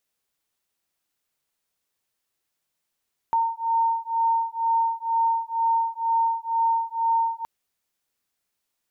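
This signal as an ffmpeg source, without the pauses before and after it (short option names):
-f lavfi -i "aevalsrc='0.0668*(sin(2*PI*913*t)+sin(2*PI*915.1*t))':d=4.12:s=44100"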